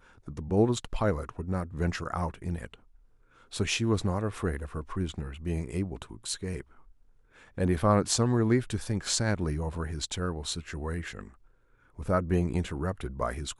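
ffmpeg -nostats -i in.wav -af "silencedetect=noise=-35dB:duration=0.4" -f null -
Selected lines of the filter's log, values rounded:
silence_start: 2.74
silence_end: 3.53 | silence_duration: 0.80
silence_start: 6.61
silence_end: 7.58 | silence_duration: 0.97
silence_start: 11.27
silence_end: 11.99 | silence_duration: 0.72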